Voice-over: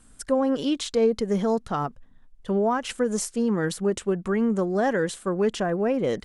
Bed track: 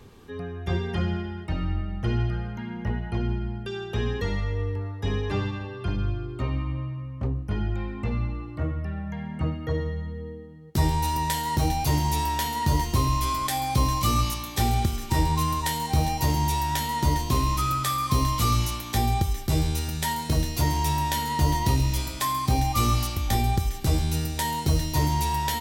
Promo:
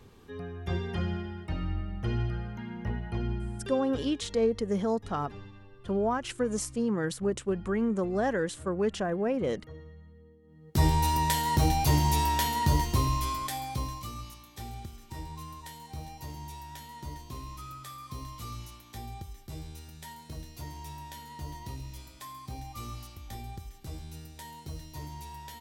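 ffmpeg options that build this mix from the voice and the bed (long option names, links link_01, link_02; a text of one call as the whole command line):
ffmpeg -i stem1.wav -i stem2.wav -filter_complex "[0:a]adelay=3400,volume=-5dB[link_01];[1:a]volume=13.5dB,afade=type=out:start_time=3.6:duration=0.53:silence=0.199526,afade=type=in:start_time=10.42:duration=0.43:silence=0.11885,afade=type=out:start_time=12.45:duration=1.66:silence=0.133352[link_02];[link_01][link_02]amix=inputs=2:normalize=0" out.wav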